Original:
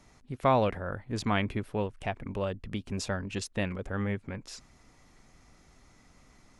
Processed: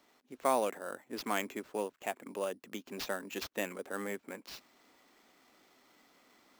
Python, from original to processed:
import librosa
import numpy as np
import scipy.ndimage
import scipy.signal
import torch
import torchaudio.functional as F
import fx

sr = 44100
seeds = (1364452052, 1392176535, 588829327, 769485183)

p1 = scipy.signal.sosfilt(scipy.signal.butter(4, 260.0, 'highpass', fs=sr, output='sos'), x)
p2 = fx.rider(p1, sr, range_db=4, speed_s=2.0)
p3 = p1 + F.gain(torch.from_numpy(p2), -2.0).numpy()
p4 = fx.sample_hold(p3, sr, seeds[0], rate_hz=9700.0, jitter_pct=0)
y = F.gain(torch.from_numpy(p4), -9.0).numpy()